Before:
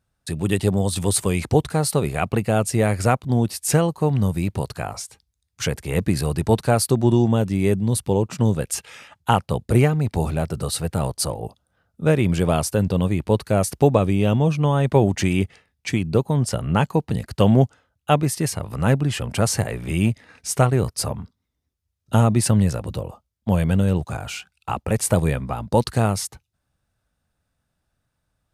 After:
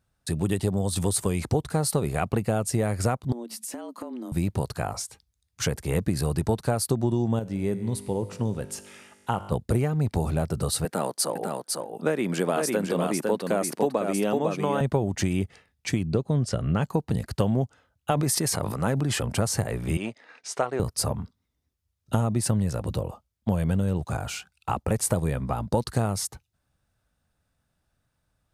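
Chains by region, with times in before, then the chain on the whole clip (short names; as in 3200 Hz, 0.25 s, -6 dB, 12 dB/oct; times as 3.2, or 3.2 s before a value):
3.32–4.32 notches 50/100 Hz + frequency shift +120 Hz + compressor 16:1, threshold -32 dBFS
7.39–9.52 high shelf 6600 Hz -5 dB + notches 50/100/150 Hz + resonator 50 Hz, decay 1.8 s
10.85–14.81 HPF 210 Hz 24 dB/oct + bell 1800 Hz +4.5 dB 0.94 oct + echo 0.503 s -5 dB
16.05–16.82 LPF 6600 Hz + bell 890 Hz -10 dB 0.34 oct
18.11–19.23 HPF 200 Hz 6 dB/oct + notch 2800 Hz, Q 20 + sustainer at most 31 dB/s
19.97–20.8 HPF 450 Hz + air absorption 97 m
whole clip: compressor, threshold -20 dBFS; dynamic EQ 2600 Hz, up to -5 dB, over -47 dBFS, Q 1.3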